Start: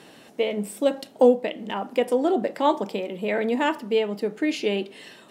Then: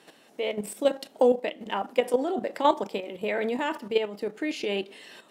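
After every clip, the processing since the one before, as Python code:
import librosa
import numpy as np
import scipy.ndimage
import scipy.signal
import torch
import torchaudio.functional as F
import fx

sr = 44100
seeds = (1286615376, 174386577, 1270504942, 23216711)

y = fx.highpass(x, sr, hz=330.0, slope=6)
y = fx.level_steps(y, sr, step_db=10)
y = y * librosa.db_to_amplitude(2.5)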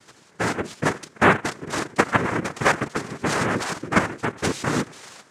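y = fx.lower_of_two(x, sr, delay_ms=4.4)
y = fx.small_body(y, sr, hz=(340.0, 1800.0), ring_ms=45, db=10)
y = fx.noise_vocoder(y, sr, seeds[0], bands=3)
y = y * librosa.db_to_amplitude(4.0)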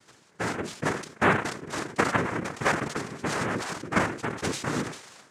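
y = fx.sustainer(x, sr, db_per_s=98.0)
y = y * librosa.db_to_amplitude(-6.0)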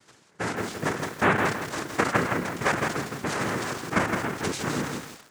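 y = fx.echo_crushed(x, sr, ms=164, feedback_pct=35, bits=7, wet_db=-4)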